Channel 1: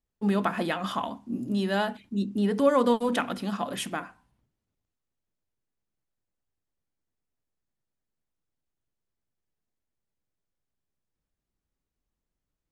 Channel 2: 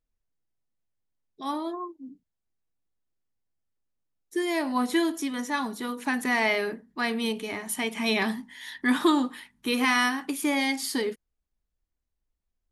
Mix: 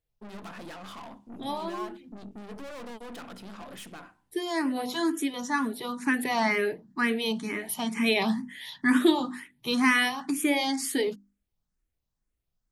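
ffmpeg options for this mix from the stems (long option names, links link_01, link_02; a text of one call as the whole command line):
ffmpeg -i stem1.wav -i stem2.wav -filter_complex "[0:a]aeval=exprs='(tanh(63.1*val(0)+0.5)-tanh(0.5))/63.1':channel_layout=same,volume=-4dB[link_01];[1:a]equalizer=frequency=150:width=1.5:gain=9.5,asplit=2[link_02][link_03];[link_03]afreqshift=2.1[link_04];[link_02][link_04]amix=inputs=2:normalize=1,volume=2.5dB[link_05];[link_01][link_05]amix=inputs=2:normalize=0,bandreject=frequency=50:width_type=h:width=6,bandreject=frequency=100:width_type=h:width=6,bandreject=frequency=150:width_type=h:width=6,bandreject=frequency=200:width_type=h:width=6,bandreject=frequency=250:width_type=h:width=6,bandreject=frequency=300:width_type=h:width=6,bandreject=frequency=350:width_type=h:width=6" out.wav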